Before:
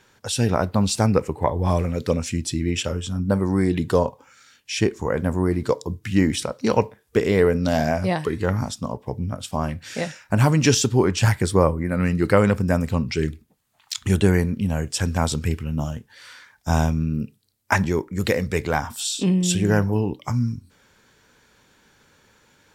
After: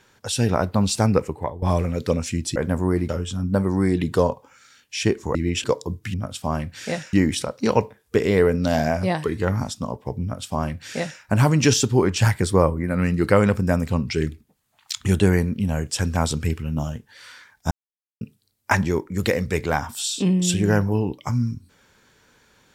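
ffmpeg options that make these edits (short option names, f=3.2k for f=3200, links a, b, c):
-filter_complex "[0:a]asplit=10[a][b][c][d][e][f][g][h][i][j];[a]atrim=end=1.62,asetpts=PTS-STARTPTS,afade=t=out:st=1.21:d=0.41:silence=0.177828[k];[b]atrim=start=1.62:end=2.562,asetpts=PTS-STARTPTS,afade=t=in:d=0.004:c=hsin:silence=0.177828[l];[c]atrim=start=5.108:end=5.642[m];[d]atrim=start=2.848:end=5.112[n];[e]atrim=start=2.558:end=2.852[o];[f]atrim=start=5.638:end=6.142[p];[g]atrim=start=9.228:end=10.222[q];[h]atrim=start=6.138:end=16.72,asetpts=PTS-STARTPTS,afade=t=out:st=10.578:d=0.004:c=hsin[r];[i]atrim=start=16.72:end=17.22,asetpts=PTS-STARTPTS,volume=0[s];[j]atrim=start=17.22,asetpts=PTS-STARTPTS,afade=t=in:d=0.004:c=hsin[t];[k][l]concat=n=2:v=0:a=1[u];[u][m]acrossfade=d=0.004:c1=hsin:c2=hsin[v];[v][n]acrossfade=d=0.004:c1=hsin:c2=hsin[w];[w][o]acrossfade=d=0.004:c1=hsin:c2=hsin[x];[x][p]acrossfade=d=0.004:c1=hsin:c2=hsin[y];[y][q]acrossfade=d=0.004:c1=hsin:c2=hsin[z];[r][s][t]concat=n=3:v=0:a=1[aa];[z][aa]acrossfade=d=0.004:c1=hsin:c2=hsin"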